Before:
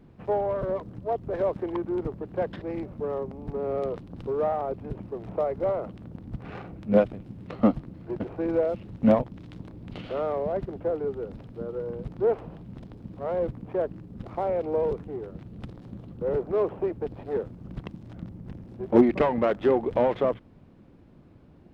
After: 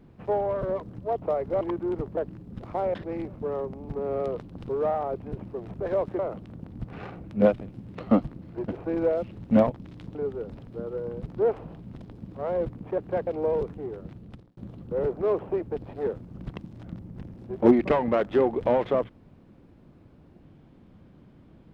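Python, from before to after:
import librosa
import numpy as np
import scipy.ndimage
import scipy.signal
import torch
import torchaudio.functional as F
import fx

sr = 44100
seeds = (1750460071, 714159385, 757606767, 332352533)

y = fx.edit(x, sr, fx.swap(start_s=1.22, length_s=0.45, other_s=5.32, other_length_s=0.39),
    fx.swap(start_s=2.23, length_s=0.29, other_s=13.8, other_length_s=0.77),
    fx.cut(start_s=9.67, length_s=1.3),
    fx.fade_out_span(start_s=15.41, length_s=0.46), tone=tone)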